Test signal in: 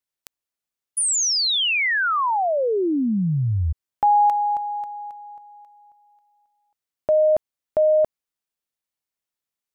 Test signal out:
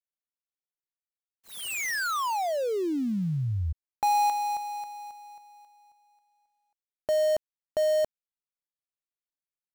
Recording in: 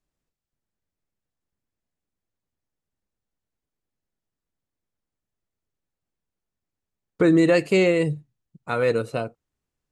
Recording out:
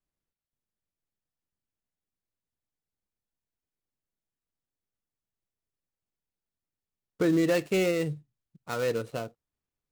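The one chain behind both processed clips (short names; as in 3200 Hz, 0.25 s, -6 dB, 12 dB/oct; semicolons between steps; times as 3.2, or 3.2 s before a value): switching dead time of 0.12 ms; gain -7 dB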